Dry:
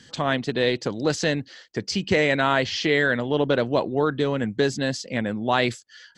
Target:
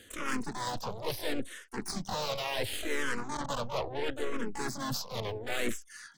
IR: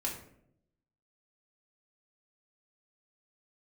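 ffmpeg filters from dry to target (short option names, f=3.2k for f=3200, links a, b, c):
-filter_complex "[0:a]aeval=exprs='0.501*(cos(1*acos(clip(val(0)/0.501,-1,1)))-cos(1*PI/2))+0.158*(cos(2*acos(clip(val(0)/0.501,-1,1)))-cos(2*PI/2))+0.0178*(cos(4*acos(clip(val(0)/0.501,-1,1)))-cos(4*PI/2))+0.00562*(cos(7*acos(clip(val(0)/0.501,-1,1)))-cos(7*PI/2))+0.1*(cos(8*acos(clip(val(0)/0.501,-1,1)))-cos(8*PI/2))':c=same,asplit=4[a][b][c][d];[b]asetrate=37084,aresample=44100,atempo=1.18921,volume=-9dB[e];[c]asetrate=52444,aresample=44100,atempo=0.840896,volume=-11dB[f];[d]asetrate=88200,aresample=44100,atempo=0.5,volume=-2dB[g];[a][e][f][g]amix=inputs=4:normalize=0,areverse,acompressor=threshold=-27dB:ratio=6,areverse,asplit=2[h][i];[i]afreqshift=-0.72[j];[h][j]amix=inputs=2:normalize=1"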